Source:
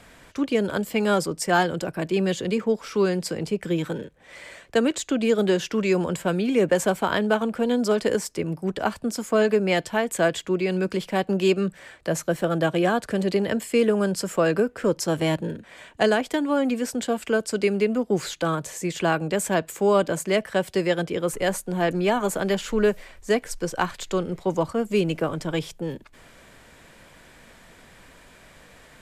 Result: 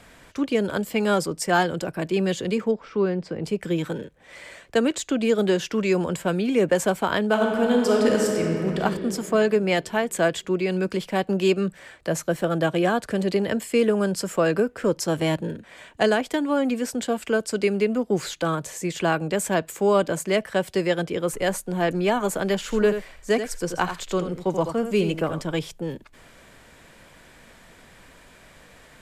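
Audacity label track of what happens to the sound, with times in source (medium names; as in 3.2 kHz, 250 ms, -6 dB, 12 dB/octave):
2.710000	3.440000	tape spacing loss at 10 kHz 28 dB
7.310000	8.790000	reverb throw, RT60 2.9 s, DRR -0.5 dB
22.620000	25.410000	delay 83 ms -9 dB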